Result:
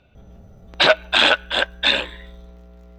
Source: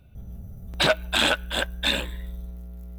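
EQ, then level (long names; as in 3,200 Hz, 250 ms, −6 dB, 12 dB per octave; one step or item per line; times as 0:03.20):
high-frequency loss of the air 180 metres
bass and treble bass −14 dB, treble −1 dB
high-shelf EQ 3,500 Hz +8.5 dB
+7.0 dB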